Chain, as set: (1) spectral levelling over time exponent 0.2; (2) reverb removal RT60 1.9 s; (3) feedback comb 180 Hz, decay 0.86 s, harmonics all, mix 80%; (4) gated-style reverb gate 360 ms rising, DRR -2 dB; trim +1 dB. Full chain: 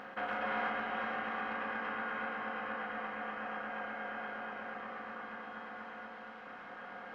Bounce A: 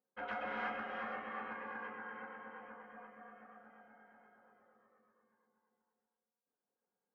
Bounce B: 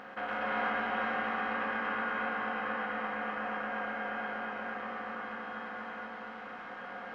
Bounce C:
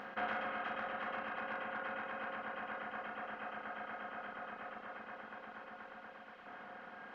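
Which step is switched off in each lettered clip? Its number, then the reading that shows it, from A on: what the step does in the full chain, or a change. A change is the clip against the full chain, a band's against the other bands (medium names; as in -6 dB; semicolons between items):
1, crest factor change +4.0 dB; 2, loudness change +4.0 LU; 4, loudness change -4.0 LU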